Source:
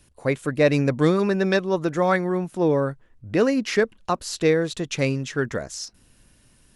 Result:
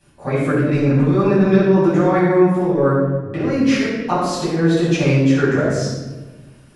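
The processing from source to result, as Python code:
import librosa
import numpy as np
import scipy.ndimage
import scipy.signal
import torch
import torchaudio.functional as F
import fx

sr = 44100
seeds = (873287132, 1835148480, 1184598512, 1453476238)

y = fx.highpass(x, sr, hz=120.0, slope=6)
y = fx.high_shelf(y, sr, hz=2600.0, db=-8.5)
y = fx.hum_notches(y, sr, base_hz=60, count=3)
y = fx.over_compress(y, sr, threshold_db=-23.0, ratio=-0.5)
y = fx.room_shoebox(y, sr, seeds[0], volume_m3=800.0, walls='mixed', distance_m=8.6)
y = y * 10.0 ** (-6.0 / 20.0)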